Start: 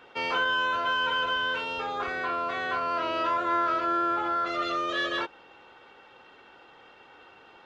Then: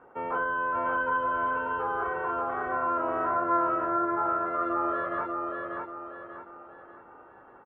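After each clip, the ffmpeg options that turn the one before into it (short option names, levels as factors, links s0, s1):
-af "lowpass=f=1400:w=0.5412,lowpass=f=1400:w=1.3066,aecho=1:1:589|1178|1767|2356|2945:0.708|0.283|0.113|0.0453|0.0181"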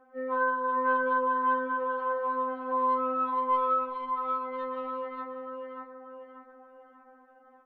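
-af "asoftclip=type=tanh:threshold=0.126,afftfilt=real='re*3.46*eq(mod(b,12),0)':imag='im*3.46*eq(mod(b,12),0)':win_size=2048:overlap=0.75,volume=0.75"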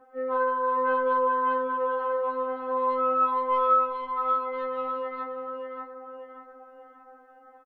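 -filter_complex "[0:a]asplit=2[s0][s1];[s1]adelay=14,volume=0.708[s2];[s0][s2]amix=inputs=2:normalize=0,volume=1.33"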